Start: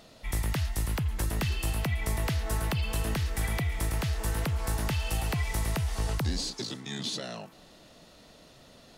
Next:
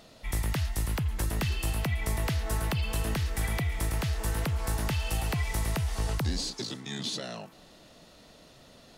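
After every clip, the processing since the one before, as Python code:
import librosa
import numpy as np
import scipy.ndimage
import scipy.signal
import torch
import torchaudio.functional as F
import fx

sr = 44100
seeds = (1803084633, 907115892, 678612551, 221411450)

y = x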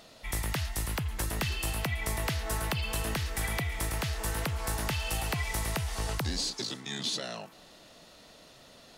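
y = fx.low_shelf(x, sr, hz=390.0, db=-6.5)
y = F.gain(torch.from_numpy(y), 2.0).numpy()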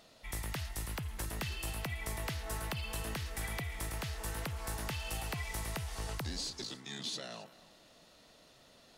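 y = x + 10.0 ** (-18.5 / 20.0) * np.pad(x, (int(268 * sr / 1000.0), 0))[:len(x)]
y = F.gain(torch.from_numpy(y), -7.0).numpy()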